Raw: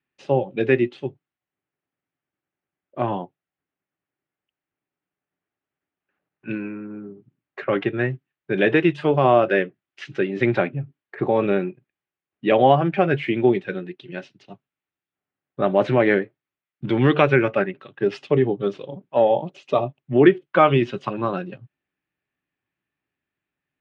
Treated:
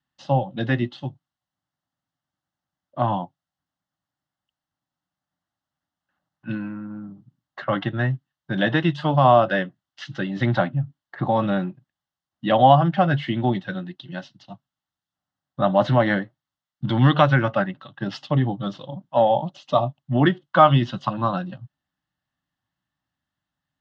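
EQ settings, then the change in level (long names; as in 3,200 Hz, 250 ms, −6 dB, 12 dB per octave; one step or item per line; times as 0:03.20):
high-frequency loss of the air 140 metres
high shelf with overshoot 2,000 Hz +7.5 dB, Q 1.5
phaser with its sweep stopped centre 1,000 Hz, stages 4
+6.0 dB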